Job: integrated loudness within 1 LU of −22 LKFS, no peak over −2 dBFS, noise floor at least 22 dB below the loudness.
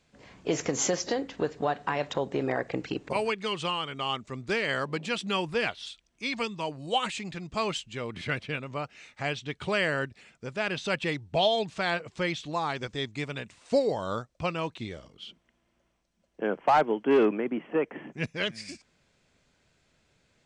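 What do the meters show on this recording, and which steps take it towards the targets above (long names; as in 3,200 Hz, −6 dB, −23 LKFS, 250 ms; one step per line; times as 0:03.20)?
integrated loudness −30.0 LKFS; sample peak −14.0 dBFS; target loudness −22.0 LKFS
→ level +8 dB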